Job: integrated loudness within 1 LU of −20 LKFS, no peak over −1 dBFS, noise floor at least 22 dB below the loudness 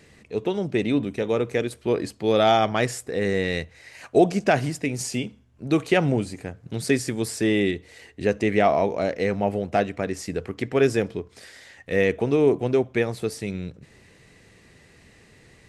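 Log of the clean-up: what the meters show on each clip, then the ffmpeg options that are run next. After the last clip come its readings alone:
integrated loudness −24.0 LKFS; sample peak −5.5 dBFS; target loudness −20.0 LKFS
→ -af "volume=4dB"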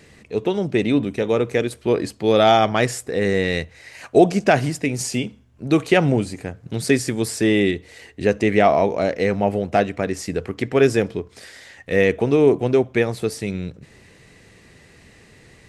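integrated loudness −20.0 LKFS; sample peak −1.5 dBFS; background noise floor −51 dBFS

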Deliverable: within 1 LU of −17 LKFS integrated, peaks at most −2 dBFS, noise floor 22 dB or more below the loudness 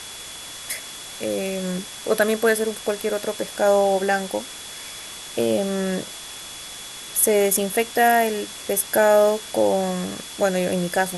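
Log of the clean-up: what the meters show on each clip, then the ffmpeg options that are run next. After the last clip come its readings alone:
interfering tone 3,400 Hz; level of the tone −40 dBFS; background noise floor −37 dBFS; target noise floor −44 dBFS; integrated loudness −21.5 LKFS; sample peak −5.0 dBFS; target loudness −17.0 LKFS
→ -af "bandreject=frequency=3400:width=30"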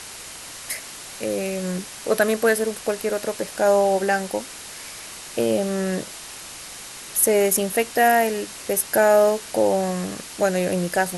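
interfering tone none found; background noise floor −38 dBFS; target noise floor −44 dBFS
→ -af "afftdn=noise_reduction=6:noise_floor=-38"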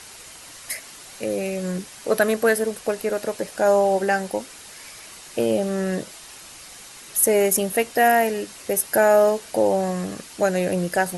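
background noise floor −43 dBFS; target noise floor −44 dBFS
→ -af "afftdn=noise_reduction=6:noise_floor=-43"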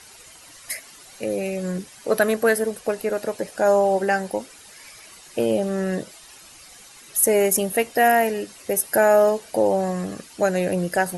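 background noise floor −46 dBFS; integrated loudness −22.0 LKFS; sample peak −5.0 dBFS; target loudness −17.0 LKFS
→ -af "volume=5dB,alimiter=limit=-2dB:level=0:latency=1"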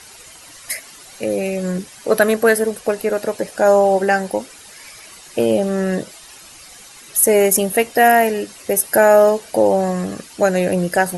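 integrated loudness −17.0 LKFS; sample peak −2.0 dBFS; background noise floor −41 dBFS

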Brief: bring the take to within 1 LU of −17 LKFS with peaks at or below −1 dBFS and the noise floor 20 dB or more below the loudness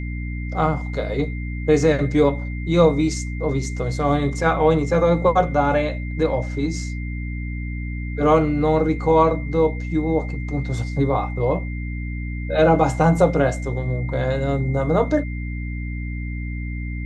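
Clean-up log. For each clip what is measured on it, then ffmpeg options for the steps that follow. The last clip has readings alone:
mains hum 60 Hz; hum harmonics up to 300 Hz; level of the hum −25 dBFS; interfering tone 2,100 Hz; level of the tone −37 dBFS; integrated loudness −21.5 LKFS; sample peak −3.0 dBFS; target loudness −17.0 LKFS
→ -af "bandreject=frequency=60:width_type=h:width=6,bandreject=frequency=120:width_type=h:width=6,bandreject=frequency=180:width_type=h:width=6,bandreject=frequency=240:width_type=h:width=6,bandreject=frequency=300:width_type=h:width=6"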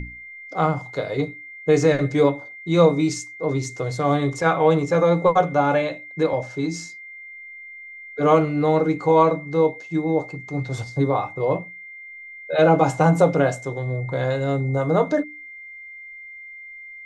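mains hum none found; interfering tone 2,100 Hz; level of the tone −37 dBFS
→ -af "bandreject=frequency=2100:width=30"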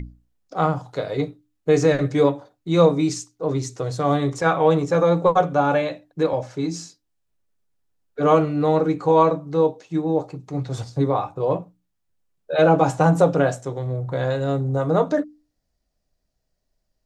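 interfering tone none found; integrated loudness −21.0 LKFS; sample peak −3.5 dBFS; target loudness −17.0 LKFS
→ -af "volume=4dB,alimiter=limit=-1dB:level=0:latency=1"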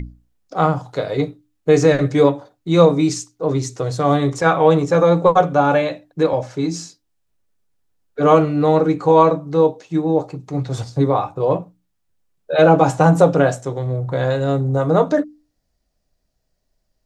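integrated loudness −17.0 LKFS; sample peak −1.0 dBFS; background noise floor −71 dBFS

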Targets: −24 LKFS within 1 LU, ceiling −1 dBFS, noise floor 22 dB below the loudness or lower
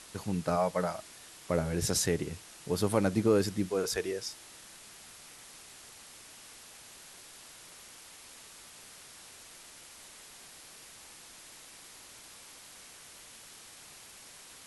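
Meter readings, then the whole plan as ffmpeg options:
background noise floor −52 dBFS; target noise floor −53 dBFS; integrated loudness −31.0 LKFS; sample peak −13.0 dBFS; target loudness −24.0 LKFS
→ -af "afftdn=noise_reduction=6:noise_floor=-52"
-af "volume=7dB"

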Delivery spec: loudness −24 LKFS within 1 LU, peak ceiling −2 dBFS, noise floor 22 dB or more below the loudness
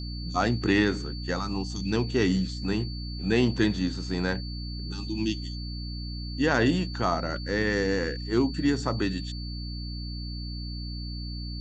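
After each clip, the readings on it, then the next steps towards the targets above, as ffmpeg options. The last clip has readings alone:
mains hum 60 Hz; hum harmonics up to 300 Hz; level of the hum −33 dBFS; interfering tone 4,500 Hz; level of the tone −41 dBFS; integrated loudness −28.5 LKFS; sample peak −8.5 dBFS; target loudness −24.0 LKFS
→ -af "bandreject=frequency=60:width_type=h:width=6,bandreject=frequency=120:width_type=h:width=6,bandreject=frequency=180:width_type=h:width=6,bandreject=frequency=240:width_type=h:width=6,bandreject=frequency=300:width_type=h:width=6"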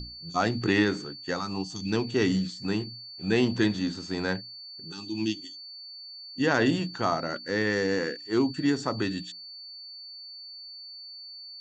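mains hum none found; interfering tone 4,500 Hz; level of the tone −41 dBFS
→ -af "bandreject=frequency=4500:width=30"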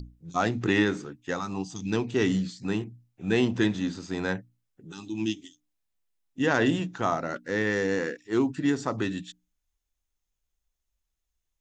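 interfering tone none found; integrated loudness −28.0 LKFS; sample peak −9.0 dBFS; target loudness −24.0 LKFS
→ -af "volume=4dB"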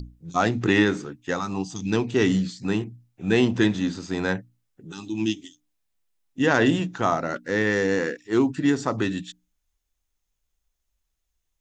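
integrated loudness −24.0 LKFS; sample peak −5.0 dBFS; background noise floor −78 dBFS

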